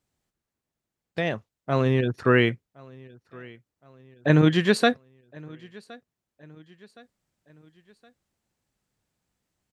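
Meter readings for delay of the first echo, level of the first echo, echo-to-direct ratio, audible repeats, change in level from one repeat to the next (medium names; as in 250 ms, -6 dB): 1067 ms, -24.0 dB, -23.0 dB, 2, -6.5 dB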